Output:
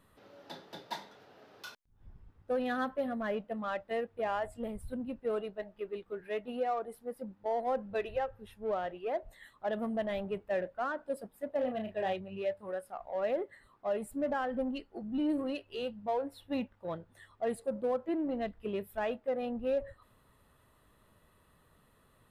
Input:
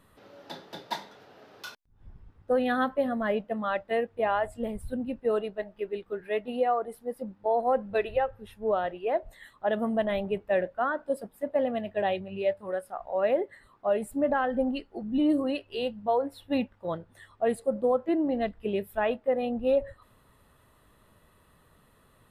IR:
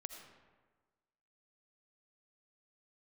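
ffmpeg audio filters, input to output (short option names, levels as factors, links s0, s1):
-filter_complex "[0:a]asettb=1/sr,asplit=3[s0][s1][s2];[s0]atrim=end=11.554[s3];[s1]atrim=start=11.55:end=12.13,asetpts=PTS-STARTPTS,afade=t=in:d=0.004:c=qsin,afade=t=out:st=0.576:d=0.004:c=qsin,asplit=2[s4][s5];[s5]adelay=32,volume=0.501[s6];[s4][s6]amix=inputs=2:normalize=0,atrim=end_sample=25578[s7];[s2]atrim=start=12.126[s8];[s3][s7]acrossfade=d=0.004:c1=hsin:c2=qsin[s9];[s9][s8]acrossfade=d=0.004:c1=qsin:c2=hsin,asplit=2[s10][s11];[s11]asoftclip=type=tanh:threshold=0.0251,volume=0.562[s12];[s10][s12]amix=inputs=2:normalize=0,volume=0.376"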